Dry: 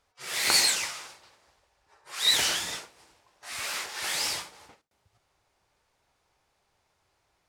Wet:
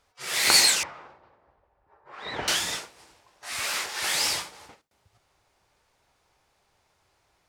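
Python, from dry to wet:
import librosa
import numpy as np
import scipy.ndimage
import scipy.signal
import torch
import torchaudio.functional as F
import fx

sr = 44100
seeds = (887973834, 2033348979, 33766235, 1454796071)

y = fx.lowpass(x, sr, hz=1100.0, slope=12, at=(0.83, 2.48))
y = F.gain(torch.from_numpy(y), 4.0).numpy()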